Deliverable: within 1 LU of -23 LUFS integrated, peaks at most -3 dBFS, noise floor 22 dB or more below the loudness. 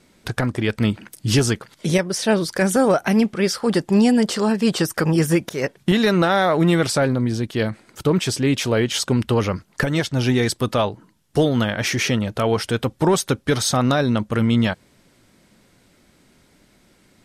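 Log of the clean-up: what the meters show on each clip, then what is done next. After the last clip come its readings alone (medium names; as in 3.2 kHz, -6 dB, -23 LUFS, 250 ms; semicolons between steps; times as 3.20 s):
loudness -20.0 LUFS; peak level -7.5 dBFS; loudness target -23.0 LUFS
-> trim -3 dB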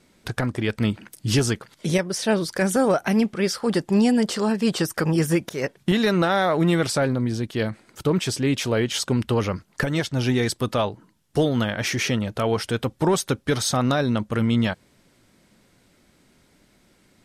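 loudness -23.0 LUFS; peak level -10.5 dBFS; noise floor -61 dBFS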